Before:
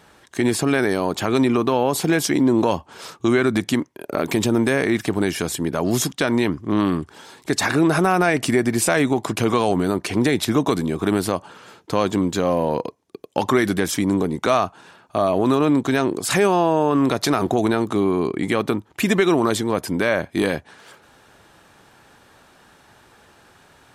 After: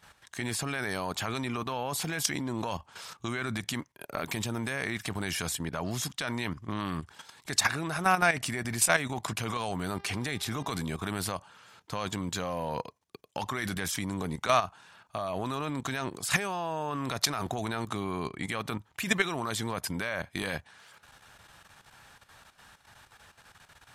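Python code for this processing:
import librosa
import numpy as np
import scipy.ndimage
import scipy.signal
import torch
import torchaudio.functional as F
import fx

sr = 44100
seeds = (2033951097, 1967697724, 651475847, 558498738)

y = fx.high_shelf(x, sr, hz=6400.0, db=-9.5, at=(5.6, 6.03))
y = fx.dmg_buzz(y, sr, base_hz=400.0, harmonics=14, level_db=-40.0, tilt_db=-9, odd_only=False, at=(9.86, 10.77), fade=0.02)
y = fx.peak_eq(y, sr, hz=340.0, db=-13.5, octaves=1.7)
y = fx.level_steps(y, sr, step_db=11)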